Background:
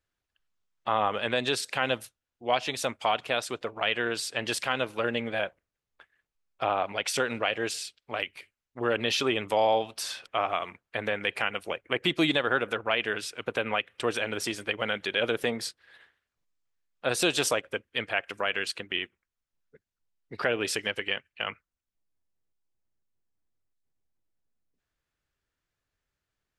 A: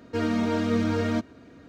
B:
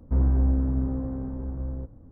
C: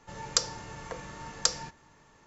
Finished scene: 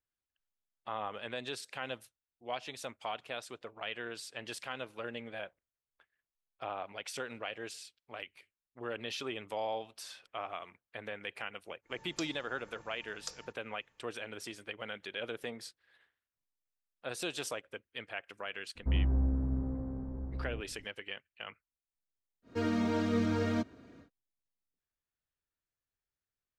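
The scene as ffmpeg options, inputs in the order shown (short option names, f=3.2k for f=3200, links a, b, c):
-filter_complex "[0:a]volume=-12.5dB[a];[3:a]atrim=end=2.26,asetpts=PTS-STARTPTS,volume=-17dB,afade=t=in:d=0.05,afade=t=out:st=2.21:d=0.05,adelay=11820[b];[2:a]atrim=end=2.11,asetpts=PTS-STARTPTS,volume=-7.5dB,afade=t=in:d=0.02,afade=t=out:st=2.09:d=0.02,adelay=18750[c];[1:a]atrim=end=1.68,asetpts=PTS-STARTPTS,volume=-6dB,afade=t=in:d=0.1,afade=t=out:st=1.58:d=0.1,adelay=22420[d];[a][b][c][d]amix=inputs=4:normalize=0"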